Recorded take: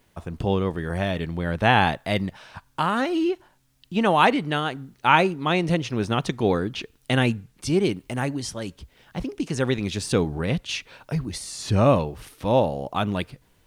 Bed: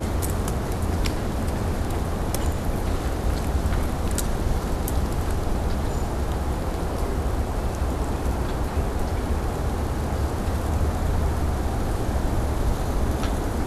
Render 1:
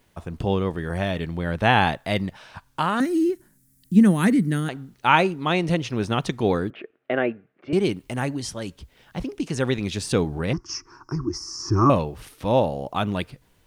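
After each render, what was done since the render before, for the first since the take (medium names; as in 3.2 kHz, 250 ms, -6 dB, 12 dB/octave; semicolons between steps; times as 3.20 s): 3.00–4.69 s: FFT filter 110 Hz 0 dB, 200 Hz +12 dB, 390 Hz -1 dB, 820 Hz -17 dB, 1.9 kHz -2 dB, 2.8 kHz -14 dB, 9.6 kHz +11 dB; 6.70–7.73 s: cabinet simulation 340–2100 Hz, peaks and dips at 370 Hz +6 dB, 630 Hz +8 dB, 930 Hz -9 dB; 10.53–11.90 s: FFT filter 140 Hz 0 dB, 210 Hz -8 dB, 350 Hz +14 dB, 540 Hz -23 dB, 1.1 kHz +10 dB, 2.4 kHz -18 dB, 3.8 kHz -30 dB, 5.3 kHz +11 dB, 8.5 kHz -17 dB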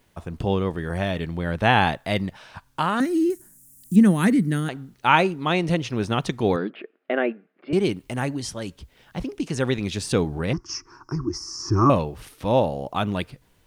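3.30–3.96 s: resonant high shelf 5.4 kHz +11 dB, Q 1.5; 6.56–7.71 s: brick-wall FIR band-pass 160–5300 Hz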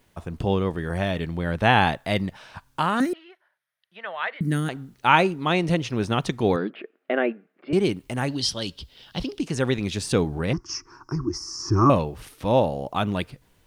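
3.13–4.41 s: elliptic band-pass 620–3400 Hz; 8.28–9.40 s: high-order bell 3.9 kHz +12 dB 1.1 oct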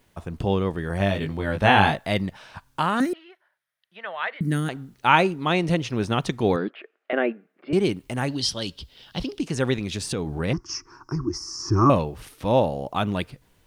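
0.98–2.07 s: doubling 20 ms -3.5 dB; 6.68–7.13 s: band-pass 610–7400 Hz; 9.78–10.31 s: compression 4:1, threshold -24 dBFS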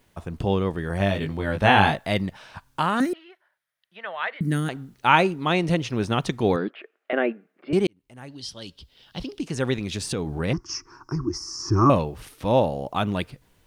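7.87–9.97 s: fade in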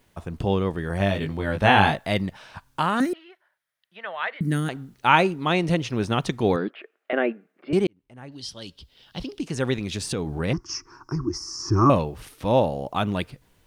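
7.84–8.32 s: treble shelf 4.2 kHz -11.5 dB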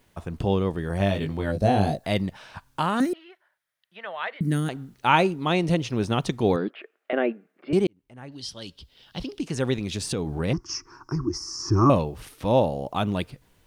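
1.52–2.04 s: time-frequency box 760–3800 Hz -14 dB; dynamic bell 1.7 kHz, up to -4 dB, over -39 dBFS, Q 1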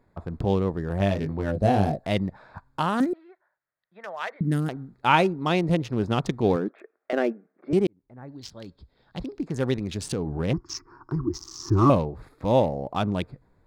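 local Wiener filter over 15 samples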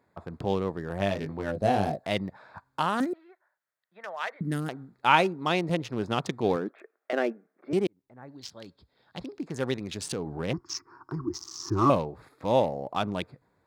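high-pass 88 Hz; bass shelf 390 Hz -7.5 dB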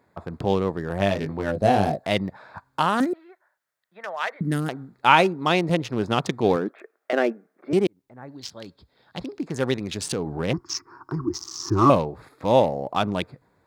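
trim +5.5 dB; peak limiter -1 dBFS, peak gain reduction 2 dB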